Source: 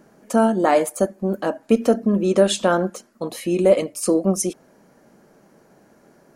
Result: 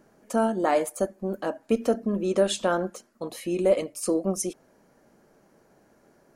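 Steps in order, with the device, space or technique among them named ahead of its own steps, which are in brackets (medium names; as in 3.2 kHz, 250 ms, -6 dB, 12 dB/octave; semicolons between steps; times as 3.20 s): low shelf boost with a cut just above (bass shelf 95 Hz +6 dB; peaking EQ 180 Hz -4 dB 1 oct); trim -6 dB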